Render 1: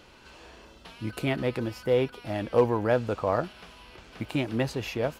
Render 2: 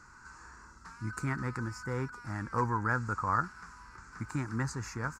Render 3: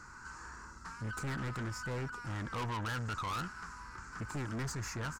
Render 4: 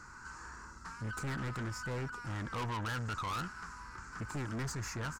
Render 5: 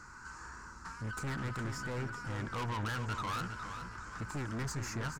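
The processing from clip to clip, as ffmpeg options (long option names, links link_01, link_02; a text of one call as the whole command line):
ffmpeg -i in.wav -af "firequalizer=gain_entry='entry(120,0);entry(630,-21);entry(910,1);entry(1400,9);entry(3100,-27);entry(4700,-4);entry(7300,8);entry(11000,-12)':delay=0.05:min_phase=1,volume=-1.5dB" out.wav
ffmpeg -i in.wav -af "aeval=exprs='(tanh(89.1*val(0)+0.2)-tanh(0.2))/89.1':channel_layout=same,volume=4dB" out.wav
ffmpeg -i in.wav -af anull out.wav
ffmpeg -i in.wav -filter_complex "[0:a]asplit=2[link_01][link_02];[link_02]adelay=412,lowpass=frequency=4900:poles=1,volume=-8dB,asplit=2[link_03][link_04];[link_04]adelay=412,lowpass=frequency=4900:poles=1,volume=0.43,asplit=2[link_05][link_06];[link_06]adelay=412,lowpass=frequency=4900:poles=1,volume=0.43,asplit=2[link_07][link_08];[link_08]adelay=412,lowpass=frequency=4900:poles=1,volume=0.43,asplit=2[link_09][link_10];[link_10]adelay=412,lowpass=frequency=4900:poles=1,volume=0.43[link_11];[link_01][link_03][link_05][link_07][link_09][link_11]amix=inputs=6:normalize=0" out.wav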